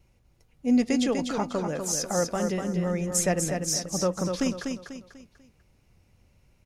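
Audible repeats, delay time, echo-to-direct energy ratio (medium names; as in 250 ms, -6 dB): 4, 246 ms, -5.0 dB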